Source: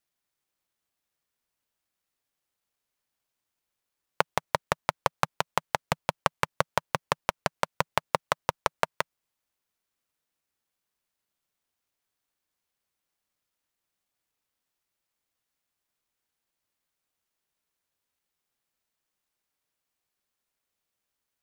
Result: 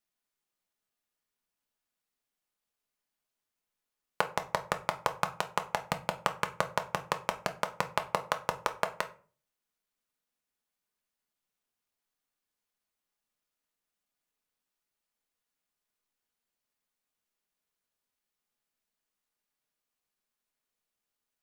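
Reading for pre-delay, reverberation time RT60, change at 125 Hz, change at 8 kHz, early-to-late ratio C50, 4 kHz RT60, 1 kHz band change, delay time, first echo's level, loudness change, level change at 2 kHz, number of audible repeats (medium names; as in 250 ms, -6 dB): 4 ms, 0.40 s, -5.5 dB, -4.0 dB, 15.5 dB, 0.25 s, -3.5 dB, no echo, no echo, -3.5 dB, -3.5 dB, no echo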